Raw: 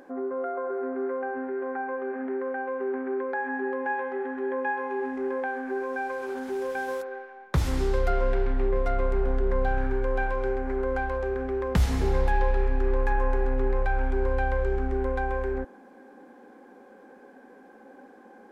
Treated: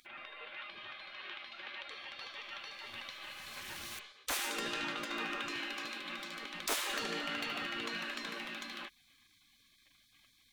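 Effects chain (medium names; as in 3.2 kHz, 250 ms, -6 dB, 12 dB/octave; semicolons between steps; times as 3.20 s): spectral gate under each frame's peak -25 dB weak; wide varispeed 1.76×; trim +4.5 dB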